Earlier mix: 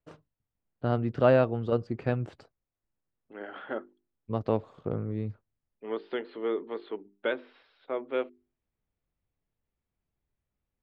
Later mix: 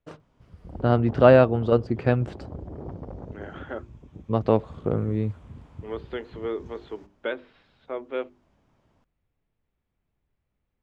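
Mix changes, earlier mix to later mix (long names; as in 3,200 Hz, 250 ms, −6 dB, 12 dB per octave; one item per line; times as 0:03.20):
first voice +7.0 dB
background: unmuted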